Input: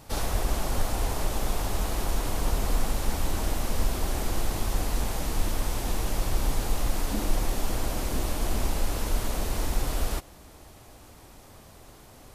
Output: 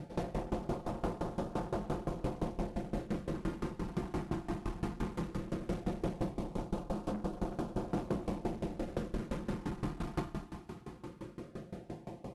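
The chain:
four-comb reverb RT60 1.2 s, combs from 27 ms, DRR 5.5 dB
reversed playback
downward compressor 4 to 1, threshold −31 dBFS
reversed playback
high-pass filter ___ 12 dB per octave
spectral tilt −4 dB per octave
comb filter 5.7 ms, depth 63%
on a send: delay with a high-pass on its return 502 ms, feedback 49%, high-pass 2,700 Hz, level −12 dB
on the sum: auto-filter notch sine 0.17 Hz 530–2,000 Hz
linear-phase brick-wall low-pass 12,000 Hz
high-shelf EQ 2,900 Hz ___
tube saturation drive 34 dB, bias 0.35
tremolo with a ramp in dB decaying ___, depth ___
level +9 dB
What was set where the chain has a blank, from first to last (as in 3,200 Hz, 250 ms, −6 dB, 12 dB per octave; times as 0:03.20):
190 Hz, −8 dB, 5.8 Hz, 20 dB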